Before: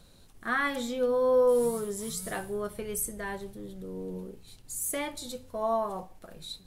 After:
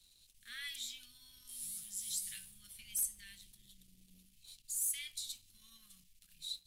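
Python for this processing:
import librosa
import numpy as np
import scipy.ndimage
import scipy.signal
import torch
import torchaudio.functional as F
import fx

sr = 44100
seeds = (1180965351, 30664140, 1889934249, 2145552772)

y = scipy.signal.sosfilt(scipy.signal.cheby2(4, 80, [350.0, 790.0], 'bandstop', fs=sr, output='sos'), x)
y = fx.leveller(y, sr, passes=1)
y = fx.low_shelf_res(y, sr, hz=140.0, db=-13.0, q=1.5)
y = y * 10.0 ** (-5.0 / 20.0)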